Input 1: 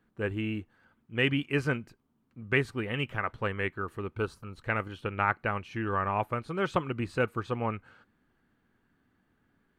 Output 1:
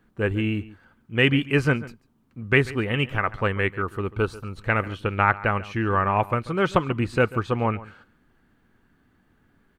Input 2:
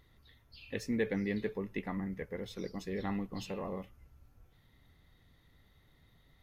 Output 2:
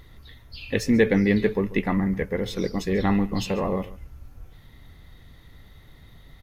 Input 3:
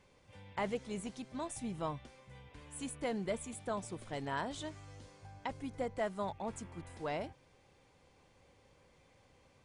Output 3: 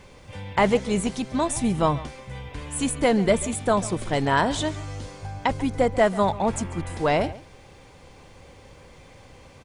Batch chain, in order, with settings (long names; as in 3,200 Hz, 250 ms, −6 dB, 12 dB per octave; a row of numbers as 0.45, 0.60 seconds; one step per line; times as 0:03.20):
low-shelf EQ 61 Hz +7 dB
slap from a distant wall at 24 metres, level −18 dB
loudness normalisation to −24 LKFS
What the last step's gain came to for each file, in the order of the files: +7.0, +13.5, +16.5 decibels